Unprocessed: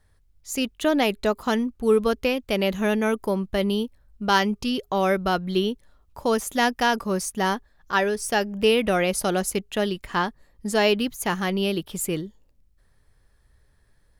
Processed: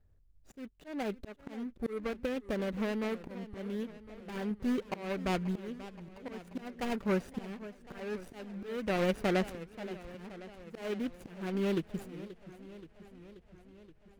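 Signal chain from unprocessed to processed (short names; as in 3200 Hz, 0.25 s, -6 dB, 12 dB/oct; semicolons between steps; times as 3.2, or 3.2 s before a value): median filter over 41 samples; dynamic EQ 2100 Hz, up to +7 dB, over -44 dBFS, Q 0.75; auto swell 0.477 s; 2.01–4.51 compressor, threshold -27 dBFS, peak gain reduction 8 dB; warbling echo 0.529 s, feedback 68%, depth 184 cents, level -15.5 dB; gain -4 dB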